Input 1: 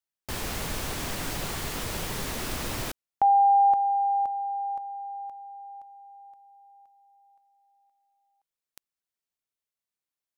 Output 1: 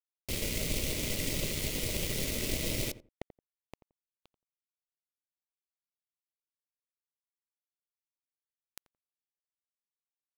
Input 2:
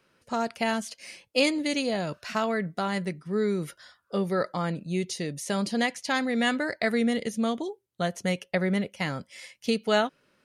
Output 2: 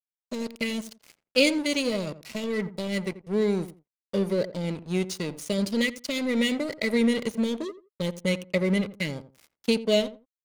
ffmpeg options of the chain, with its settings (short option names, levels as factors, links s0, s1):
-filter_complex "[0:a]afftfilt=real='re*(1-between(b*sr/4096,650,1900))':imag='im*(1-between(b*sr/4096,650,1900))':win_size=4096:overlap=0.75,aeval=exprs='sgn(val(0))*max(abs(val(0))-0.0119,0)':c=same,asplit=2[s0][s1];[s1]adelay=86,lowpass=f=950:p=1,volume=0.224,asplit=2[s2][s3];[s3]adelay=86,lowpass=f=950:p=1,volume=0.21[s4];[s0][s2][s4]amix=inputs=3:normalize=0,volume=1.5"